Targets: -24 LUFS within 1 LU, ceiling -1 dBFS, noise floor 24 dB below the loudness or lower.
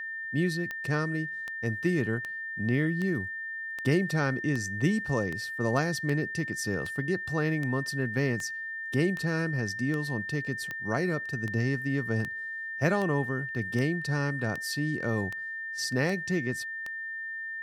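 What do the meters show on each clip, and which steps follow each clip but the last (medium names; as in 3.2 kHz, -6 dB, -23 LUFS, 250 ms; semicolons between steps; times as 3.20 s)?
clicks found 22; steady tone 1.8 kHz; tone level -34 dBFS; loudness -30.0 LUFS; peak level -12.0 dBFS; loudness target -24.0 LUFS
-> de-click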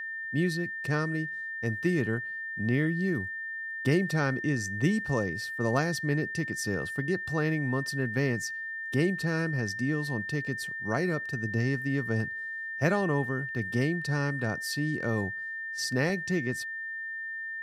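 clicks found 0; steady tone 1.8 kHz; tone level -34 dBFS
-> band-stop 1.8 kHz, Q 30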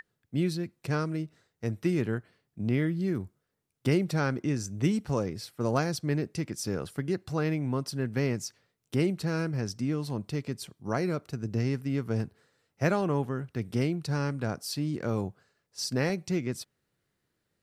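steady tone not found; loudness -31.0 LUFS; peak level -12.5 dBFS; loudness target -24.0 LUFS
-> trim +7 dB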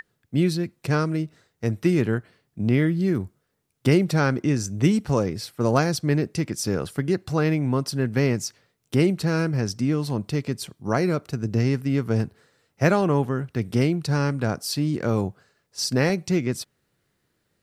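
loudness -24.0 LUFS; peak level -5.5 dBFS; noise floor -73 dBFS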